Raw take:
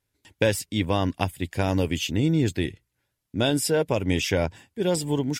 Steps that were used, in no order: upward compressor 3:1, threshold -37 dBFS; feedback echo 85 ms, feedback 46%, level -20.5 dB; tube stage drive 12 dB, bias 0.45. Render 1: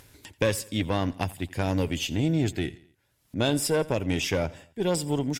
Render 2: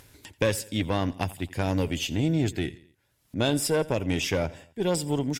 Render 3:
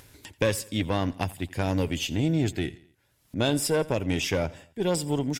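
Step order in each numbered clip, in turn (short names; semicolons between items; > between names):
upward compressor > tube stage > feedback echo; upward compressor > feedback echo > tube stage; tube stage > upward compressor > feedback echo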